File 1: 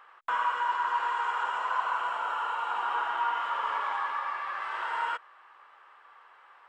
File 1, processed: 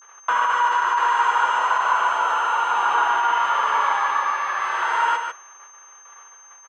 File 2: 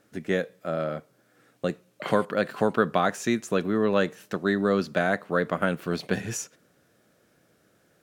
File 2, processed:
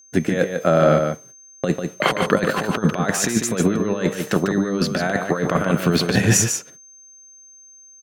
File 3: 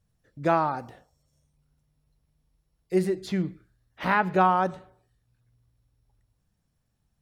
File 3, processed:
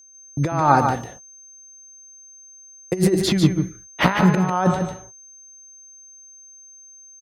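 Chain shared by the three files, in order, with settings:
noise gate −54 dBFS, range −34 dB
high-pass filter 54 Hz
low-shelf EQ 120 Hz +4 dB
compressor whose output falls as the input rises −28 dBFS, ratio −0.5
steady tone 6,300 Hz −58 dBFS
on a send: single-tap delay 147 ms −6 dB
on the sum: loudness normalisation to −20 LKFS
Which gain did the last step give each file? +9.5, +10.5, +11.5 decibels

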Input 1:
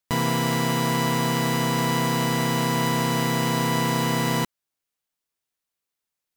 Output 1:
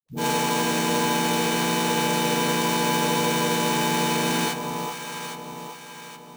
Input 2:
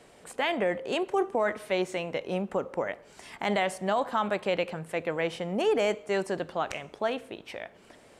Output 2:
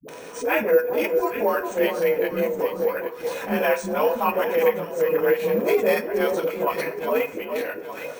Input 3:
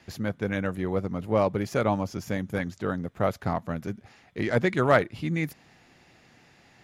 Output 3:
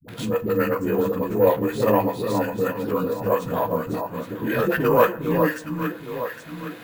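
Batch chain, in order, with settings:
partials spread apart or drawn together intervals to 90%
high-pass filter 130 Hz
high-shelf EQ 3,300 Hz +9 dB
notch filter 5,000 Hz, Q 8.4
hum removal 193.4 Hz, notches 31
hollow resonant body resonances 480/980/2,500 Hz, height 13 dB, ringing for 90 ms
transient designer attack −12 dB, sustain −8 dB
all-pass dispersion highs, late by 85 ms, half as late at 370 Hz
on a send: delay that swaps between a low-pass and a high-pass 408 ms, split 1,200 Hz, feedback 54%, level −7 dB
on the sum: feedback delay network reverb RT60 0.57 s, high-frequency decay 0.65×, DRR 13 dB
bad sample-rate conversion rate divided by 3×, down none, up hold
multiband upward and downward compressor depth 40%
loudness normalisation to −23 LKFS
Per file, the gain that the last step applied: 0.0, +8.0, +8.0 decibels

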